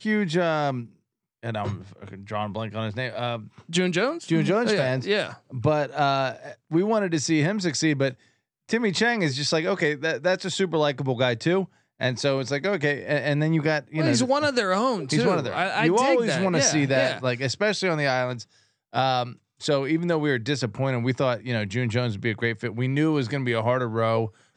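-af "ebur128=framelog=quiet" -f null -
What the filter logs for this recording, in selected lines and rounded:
Integrated loudness:
  I:         -24.3 LUFS
  Threshold: -34.6 LUFS
Loudness range:
  LRA:         3.6 LU
  Threshold: -44.5 LUFS
  LRA low:   -25.9 LUFS
  LRA high:  -22.4 LUFS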